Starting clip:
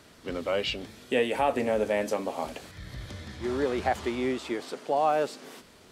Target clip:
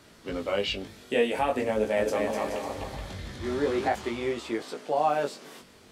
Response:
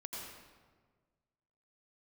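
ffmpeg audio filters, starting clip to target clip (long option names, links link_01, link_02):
-filter_complex "[0:a]flanger=delay=17.5:depth=3.8:speed=0.46,asettb=1/sr,asplit=3[link_01][link_02][link_03];[link_01]atrim=end=1.724[link_04];[link_02]atrim=start=1.72:end=3.88,asetpts=PTS-STARTPTS,afade=type=in:duration=0.004:curve=qsin,afade=type=out:start_time=2.156:duration=0.004:curve=qsin,aecho=1:1:250|425|547.5|633.2|693.3:0.631|0.398|0.251|0.158|0.1,atrim=end_sample=95256[link_05];[link_03]atrim=start=3.876[link_06];[link_04][link_05]acrossfade=duration=0.004:curve1=hsin:curve2=qsin[link_07];[link_07][link_06]acrossfade=duration=0.004:curve1=qsin:curve2=hsin,volume=3dB"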